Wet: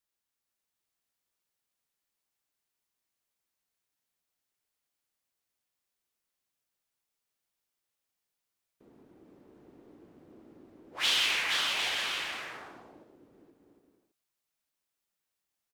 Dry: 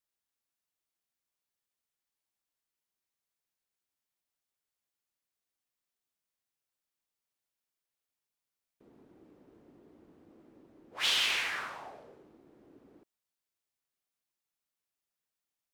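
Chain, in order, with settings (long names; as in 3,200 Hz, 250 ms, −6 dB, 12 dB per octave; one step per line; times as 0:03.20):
bouncing-ball delay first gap 470 ms, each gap 0.6×, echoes 5
level +1.5 dB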